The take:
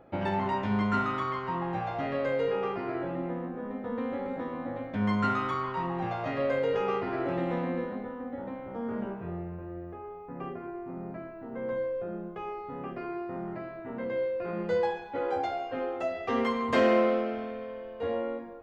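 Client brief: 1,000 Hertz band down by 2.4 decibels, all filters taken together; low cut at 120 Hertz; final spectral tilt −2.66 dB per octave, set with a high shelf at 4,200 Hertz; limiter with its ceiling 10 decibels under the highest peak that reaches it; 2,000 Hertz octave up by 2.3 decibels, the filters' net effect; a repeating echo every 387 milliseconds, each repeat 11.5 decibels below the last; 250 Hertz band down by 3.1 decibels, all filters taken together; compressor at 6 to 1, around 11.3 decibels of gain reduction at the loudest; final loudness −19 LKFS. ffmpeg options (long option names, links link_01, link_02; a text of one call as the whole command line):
ffmpeg -i in.wav -af "highpass=120,equalizer=frequency=250:width_type=o:gain=-3.5,equalizer=frequency=1000:width_type=o:gain=-4,equalizer=frequency=2000:width_type=o:gain=6,highshelf=frequency=4200:gain=-9,acompressor=threshold=-33dB:ratio=6,alimiter=level_in=9.5dB:limit=-24dB:level=0:latency=1,volume=-9.5dB,aecho=1:1:387|774|1161:0.266|0.0718|0.0194,volume=22dB" out.wav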